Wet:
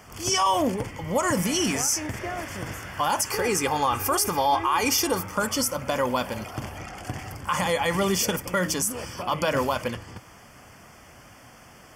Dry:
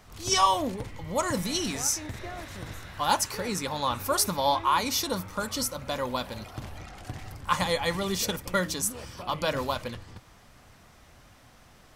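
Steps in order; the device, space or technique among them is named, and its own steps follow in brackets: PA system with an anti-feedback notch (high-pass 120 Hz 6 dB/octave; Butterworth band-stop 3.9 kHz, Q 3.4; peak limiter -21.5 dBFS, peak gain reduction 11 dB); 3.31–5.24 s: comb 2.5 ms, depth 55%; trim +7.5 dB

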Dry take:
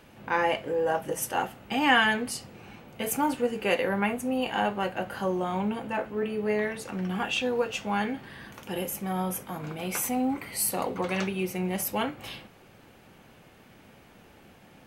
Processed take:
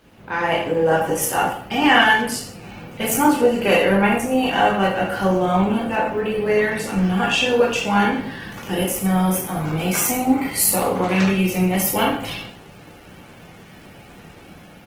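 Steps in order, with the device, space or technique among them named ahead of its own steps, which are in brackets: speakerphone in a meeting room (reverberation RT60 0.55 s, pre-delay 13 ms, DRR -1 dB; speakerphone echo 100 ms, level -15 dB; level rider gain up to 7 dB; Opus 16 kbps 48 kHz)

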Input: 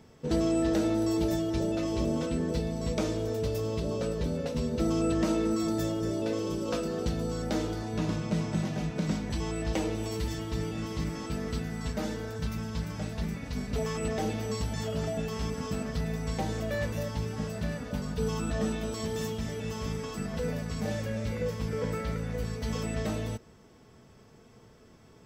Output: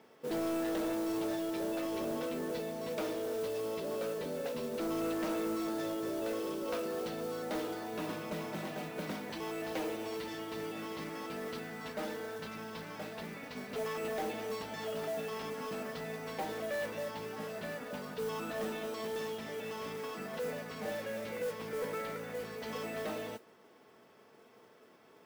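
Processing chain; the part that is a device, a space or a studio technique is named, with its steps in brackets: carbon microphone (band-pass 370–3600 Hz; saturation -30 dBFS, distortion -14 dB; modulation noise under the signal 17 dB)

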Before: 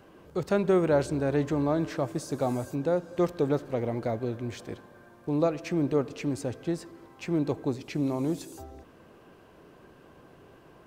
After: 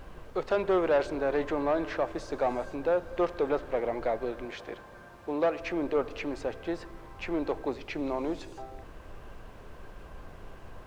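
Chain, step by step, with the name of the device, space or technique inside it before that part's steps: aircraft cabin announcement (band-pass 490–3100 Hz; saturation -23.5 dBFS, distortion -15 dB; brown noise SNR 13 dB); 4.45–5.61 s: high-pass 140 Hz 6 dB/octave; trim +5 dB

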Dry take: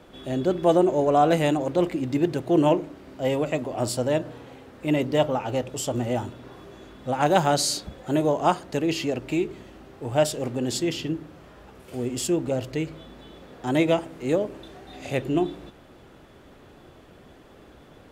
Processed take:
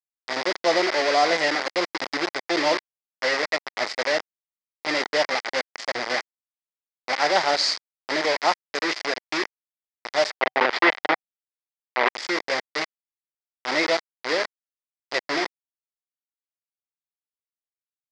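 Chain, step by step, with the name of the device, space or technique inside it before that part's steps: hand-held game console (bit crusher 4-bit; cabinet simulation 490–5500 Hz, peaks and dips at 2 kHz +9 dB, 2.8 kHz -4 dB, 4.9 kHz +9 dB); 10.30–12.09 s: FFT filter 130 Hz 0 dB, 760 Hz +11 dB, 3.1 kHz +7 dB, 5.2 kHz -6 dB, 13 kHz -17 dB

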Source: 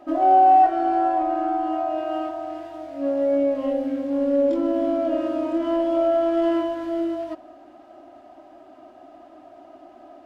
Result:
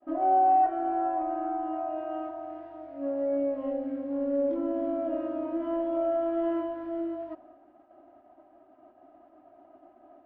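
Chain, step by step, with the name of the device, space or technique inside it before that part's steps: hearing-loss simulation (low-pass 1.8 kHz 12 dB/octave; expander -43 dBFS); trim -7.5 dB

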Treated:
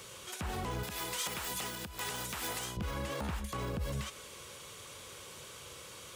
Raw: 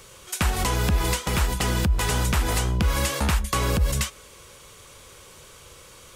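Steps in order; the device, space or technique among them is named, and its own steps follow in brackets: broadcast voice chain (high-pass 88 Hz 12 dB/octave; de-esser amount 80%; compression 3:1, threshold -30 dBFS, peak gain reduction 8 dB; peaking EQ 3.3 kHz +2.5 dB; peak limiter -26.5 dBFS, peak gain reduction 8 dB); 0.83–2.77 s: tilt EQ +3.5 dB/octave; trim -2 dB

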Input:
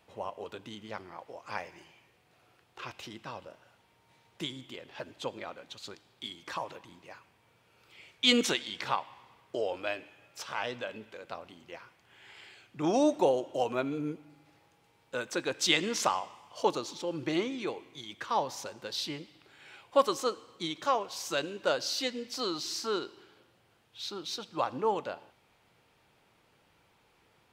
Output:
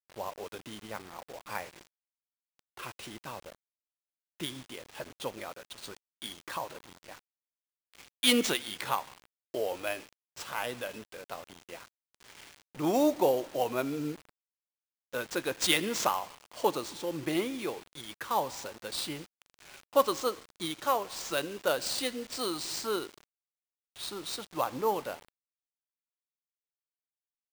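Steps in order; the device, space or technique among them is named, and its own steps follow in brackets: early 8-bit sampler (sample-rate reducer 13 kHz, jitter 0%; bit crusher 8-bit)

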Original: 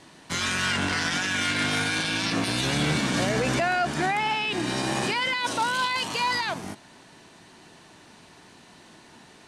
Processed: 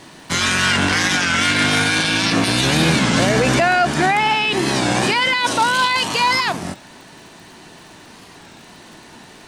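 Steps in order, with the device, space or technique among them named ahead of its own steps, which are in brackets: warped LP (warped record 33 1/3 rpm, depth 160 cents; crackle 53 per s -45 dBFS; pink noise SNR 42 dB); trim +9 dB

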